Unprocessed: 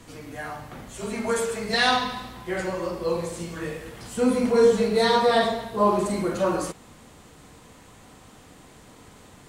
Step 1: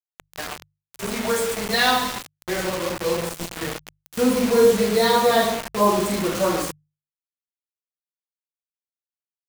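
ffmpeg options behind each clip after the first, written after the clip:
-af "acrusher=bits=4:mix=0:aa=0.000001,bandreject=f=50:t=h:w=6,bandreject=f=100:t=h:w=6,bandreject=f=150:t=h:w=6,volume=2dB"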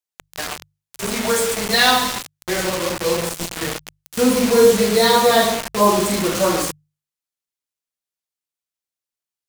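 -af "equalizer=f=7.6k:w=0.4:g=4,volume=3dB"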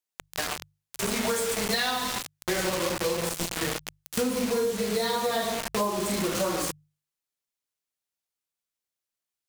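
-af "acompressor=threshold=-24dB:ratio=10"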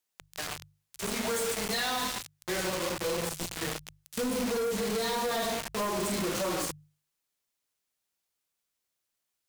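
-filter_complex "[0:a]asplit=2[a][b];[b]alimiter=level_in=0.5dB:limit=-24dB:level=0:latency=1:release=198,volume=-0.5dB,volume=-1.5dB[c];[a][c]amix=inputs=2:normalize=0,asoftclip=type=tanh:threshold=-27.5dB"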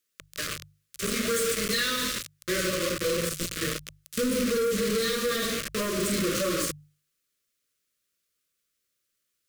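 -af "asuperstop=centerf=820:order=8:qfactor=1.6,volume=4.5dB"

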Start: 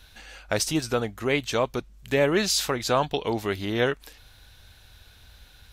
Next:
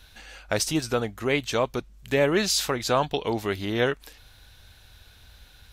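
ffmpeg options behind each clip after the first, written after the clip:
-af anull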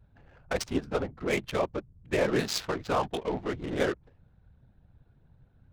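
-af "afftfilt=real='hypot(re,im)*cos(2*PI*random(0))':imag='hypot(re,im)*sin(2*PI*random(1))':win_size=512:overlap=0.75,adynamicsmooth=sensitivity=7:basefreq=600,volume=1.5dB"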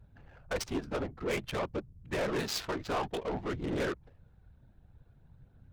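-af "asoftclip=type=tanh:threshold=-28dB,aphaser=in_gain=1:out_gain=1:delay=3.4:decay=0.22:speed=0.54:type=triangular"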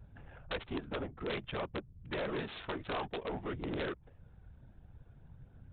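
-af "acompressor=threshold=-53dB:ratio=1.5,aresample=8000,aeval=exprs='(mod(53.1*val(0)+1,2)-1)/53.1':c=same,aresample=44100,volume=3.5dB"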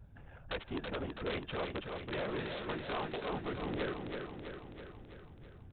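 -af "aecho=1:1:328|656|984|1312|1640|1968|2296|2624:0.562|0.337|0.202|0.121|0.0729|0.0437|0.0262|0.0157,volume=-1dB"

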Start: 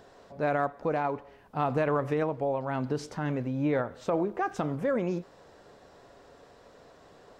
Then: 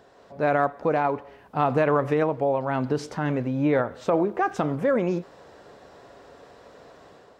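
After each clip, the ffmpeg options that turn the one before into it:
-af "highpass=45,bass=f=250:g=-2,treble=f=4k:g=-3,dynaudnorm=f=130:g=5:m=6dB"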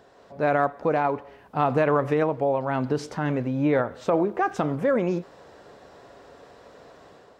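-af anull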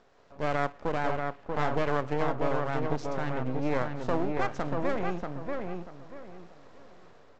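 -filter_complex "[0:a]aresample=16000,aeval=exprs='max(val(0),0)':c=same,aresample=44100,asplit=2[a][b];[b]adelay=637,lowpass=f=2.6k:p=1,volume=-3.5dB,asplit=2[c][d];[d]adelay=637,lowpass=f=2.6k:p=1,volume=0.28,asplit=2[e][f];[f]adelay=637,lowpass=f=2.6k:p=1,volume=0.28,asplit=2[g][h];[h]adelay=637,lowpass=f=2.6k:p=1,volume=0.28[i];[a][c][e][g][i]amix=inputs=5:normalize=0,volume=-4dB"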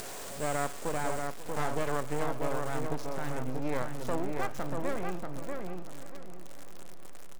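-af "aeval=exprs='val(0)+0.5*0.0335*sgn(val(0))':c=same,acompressor=mode=upward:threshold=-36dB:ratio=2.5,aecho=1:1:536|1072|1608|2144|2680:0.15|0.0808|0.0436|0.0236|0.0127,volume=-4.5dB"

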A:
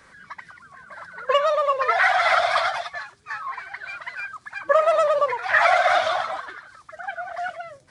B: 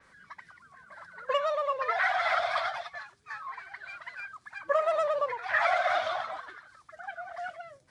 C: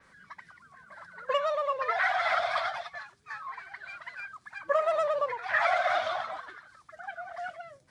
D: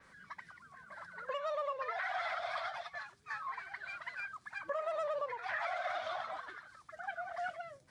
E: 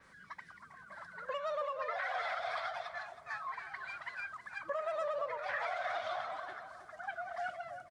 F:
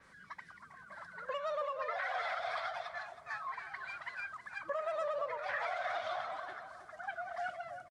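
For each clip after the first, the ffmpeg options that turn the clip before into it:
-af "adynamicequalizer=threshold=0.00891:dfrequency=5600:dqfactor=0.7:tfrequency=5600:tqfactor=0.7:attack=5:release=100:ratio=0.375:range=3.5:mode=cutabove:tftype=highshelf,volume=-8.5dB"
-af "equalizer=f=180:t=o:w=0.82:g=3"
-af "alimiter=level_in=3dB:limit=-24dB:level=0:latency=1:release=413,volume=-3dB,volume=-1.5dB"
-filter_complex "[0:a]asplit=2[a][b];[b]adelay=319,lowpass=f=1.2k:p=1,volume=-7dB,asplit=2[c][d];[d]adelay=319,lowpass=f=1.2k:p=1,volume=0.45,asplit=2[e][f];[f]adelay=319,lowpass=f=1.2k:p=1,volume=0.45,asplit=2[g][h];[h]adelay=319,lowpass=f=1.2k:p=1,volume=0.45,asplit=2[i][j];[j]adelay=319,lowpass=f=1.2k:p=1,volume=0.45[k];[a][c][e][g][i][k]amix=inputs=6:normalize=0"
-af "aresample=32000,aresample=44100"

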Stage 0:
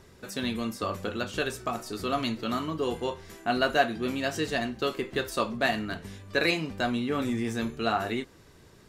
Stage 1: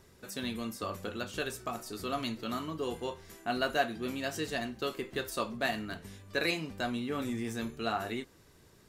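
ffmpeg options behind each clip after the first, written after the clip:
-af "highshelf=f=8.7k:g=8.5,volume=-6dB"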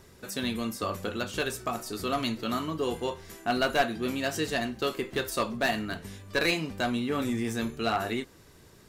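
-af "aeval=exprs='clip(val(0),-1,0.0473)':c=same,volume=5.5dB"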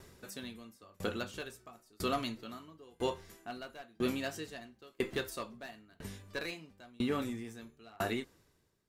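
-af "aeval=exprs='val(0)*pow(10,-31*if(lt(mod(1*n/s,1),2*abs(1)/1000),1-mod(1*n/s,1)/(2*abs(1)/1000),(mod(1*n/s,1)-2*abs(1)/1000)/(1-2*abs(1)/1000))/20)':c=same"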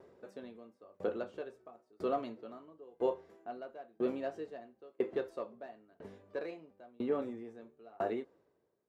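-af "bandpass=f=520:t=q:w=1.6:csg=0,volume=4.5dB"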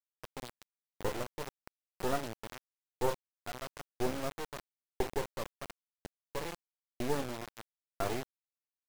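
-af "acrusher=bits=4:dc=4:mix=0:aa=0.000001,volume=4dB"

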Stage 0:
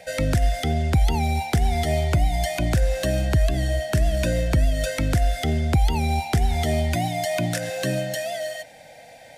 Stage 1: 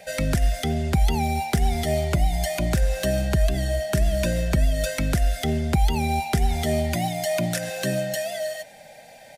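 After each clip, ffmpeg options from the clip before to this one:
-af "highshelf=f=12k:g=6.5,aecho=1:1:5:0.41,volume=-1dB"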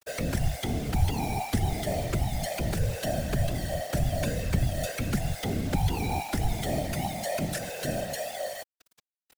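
-af "acrusher=bits=5:mix=0:aa=0.000001,afftfilt=real='hypot(re,im)*cos(2*PI*random(0))':imag='hypot(re,im)*sin(2*PI*random(1))':win_size=512:overlap=0.75"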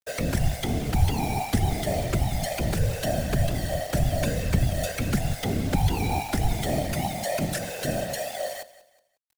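-af "aeval=exprs='sgn(val(0))*max(abs(val(0))-0.00237,0)':c=same,aecho=1:1:181|362|543:0.133|0.044|0.0145,volume=3.5dB"

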